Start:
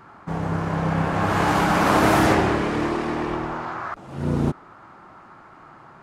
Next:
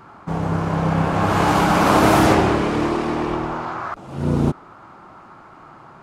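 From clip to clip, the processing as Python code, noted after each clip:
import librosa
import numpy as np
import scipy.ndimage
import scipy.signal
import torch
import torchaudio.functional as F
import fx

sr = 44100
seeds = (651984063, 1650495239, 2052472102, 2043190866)

y = fx.peak_eq(x, sr, hz=1800.0, db=-4.5, octaves=0.49)
y = y * librosa.db_to_amplitude(3.5)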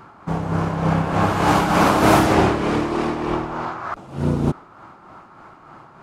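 y = x * (1.0 - 0.46 / 2.0 + 0.46 / 2.0 * np.cos(2.0 * np.pi * 3.3 * (np.arange(len(x)) / sr)))
y = y * librosa.db_to_amplitude(1.5)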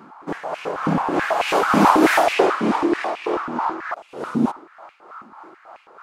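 y = fx.filter_held_highpass(x, sr, hz=9.2, low_hz=230.0, high_hz=2500.0)
y = y * librosa.db_to_amplitude(-3.0)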